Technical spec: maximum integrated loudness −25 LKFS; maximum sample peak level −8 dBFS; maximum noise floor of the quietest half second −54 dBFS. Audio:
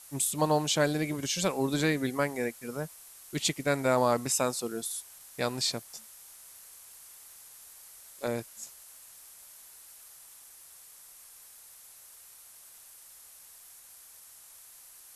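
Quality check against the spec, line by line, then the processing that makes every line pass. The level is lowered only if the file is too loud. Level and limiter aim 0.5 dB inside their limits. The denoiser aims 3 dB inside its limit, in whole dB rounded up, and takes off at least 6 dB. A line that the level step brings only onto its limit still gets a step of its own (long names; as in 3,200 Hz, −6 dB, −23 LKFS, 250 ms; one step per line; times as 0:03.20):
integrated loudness −30.0 LKFS: in spec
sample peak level −13.0 dBFS: in spec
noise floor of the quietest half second −53 dBFS: out of spec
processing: broadband denoise 6 dB, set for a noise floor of −53 dBFS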